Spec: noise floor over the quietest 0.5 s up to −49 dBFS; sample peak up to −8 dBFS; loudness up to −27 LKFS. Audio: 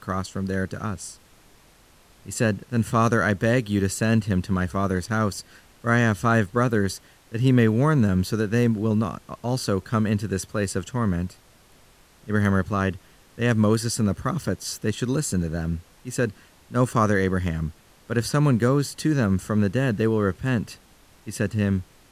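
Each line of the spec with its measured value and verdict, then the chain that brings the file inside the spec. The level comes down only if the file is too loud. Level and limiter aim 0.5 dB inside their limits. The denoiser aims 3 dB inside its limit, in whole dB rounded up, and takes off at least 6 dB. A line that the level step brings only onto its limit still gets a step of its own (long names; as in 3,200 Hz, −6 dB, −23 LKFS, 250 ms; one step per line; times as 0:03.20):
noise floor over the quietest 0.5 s −55 dBFS: in spec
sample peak −5.0 dBFS: out of spec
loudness −24.0 LKFS: out of spec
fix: level −3.5 dB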